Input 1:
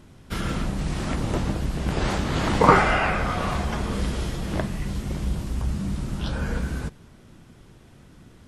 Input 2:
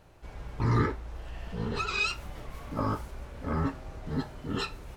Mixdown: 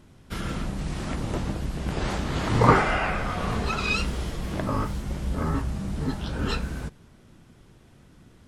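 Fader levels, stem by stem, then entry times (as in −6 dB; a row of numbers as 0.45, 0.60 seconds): −3.5, +2.0 decibels; 0.00, 1.90 seconds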